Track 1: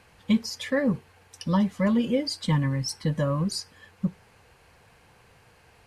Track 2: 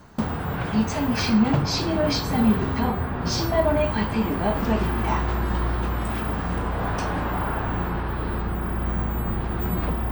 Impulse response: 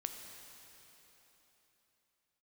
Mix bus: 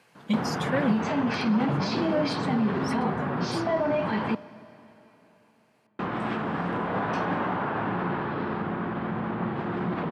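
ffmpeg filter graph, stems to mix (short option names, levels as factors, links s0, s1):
-filter_complex "[0:a]volume=0.708,afade=t=out:st=0.9:d=0.35:silence=0.375837[s0];[1:a]alimiter=limit=0.126:level=0:latency=1:release=30,lowpass=3200,adelay=150,volume=0.891,asplit=3[s1][s2][s3];[s1]atrim=end=4.35,asetpts=PTS-STARTPTS,afade=t=out:st=4.346:d=0.004:c=hsin[s4];[s2]atrim=start=4.35:end=5.99,asetpts=PTS-STARTPTS,volume=0[s5];[s3]atrim=start=5.99,asetpts=PTS-STARTPTS,afade=t=in:d=0.004:c=hsin[s6];[s4][s5][s6]concat=n=3:v=0:a=1,asplit=2[s7][s8];[s8]volume=0.376[s9];[2:a]atrim=start_sample=2205[s10];[s9][s10]afir=irnorm=-1:irlink=0[s11];[s0][s7][s11]amix=inputs=3:normalize=0,highpass=f=140:w=0.5412,highpass=f=140:w=1.3066"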